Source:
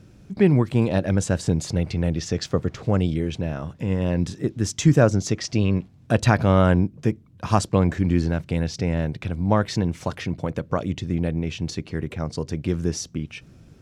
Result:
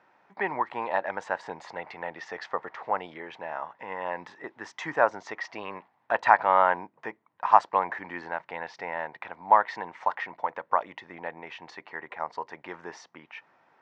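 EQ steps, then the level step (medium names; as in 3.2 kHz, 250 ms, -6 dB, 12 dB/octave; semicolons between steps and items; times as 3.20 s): resonant high-pass 900 Hz, resonance Q 4.9; tape spacing loss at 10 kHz 36 dB; peaking EQ 1.9 kHz +10.5 dB 0.36 oct; 0.0 dB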